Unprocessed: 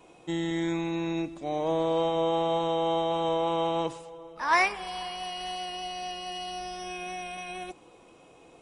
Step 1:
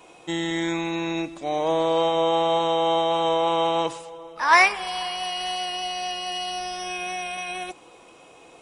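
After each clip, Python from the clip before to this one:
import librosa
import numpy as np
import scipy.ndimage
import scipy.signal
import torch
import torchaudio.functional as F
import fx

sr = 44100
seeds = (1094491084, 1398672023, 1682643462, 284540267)

y = fx.low_shelf(x, sr, hz=440.0, db=-9.5)
y = F.gain(torch.from_numpy(y), 8.5).numpy()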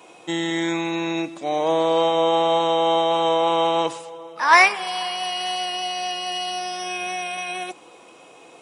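y = scipy.signal.sosfilt(scipy.signal.butter(2, 150.0, 'highpass', fs=sr, output='sos'), x)
y = F.gain(torch.from_numpy(y), 2.5).numpy()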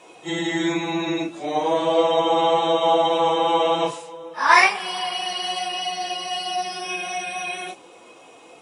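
y = fx.phase_scramble(x, sr, seeds[0], window_ms=100)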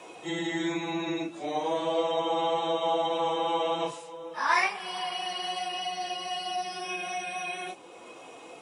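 y = fx.band_squash(x, sr, depth_pct=40)
y = F.gain(torch.from_numpy(y), -8.5).numpy()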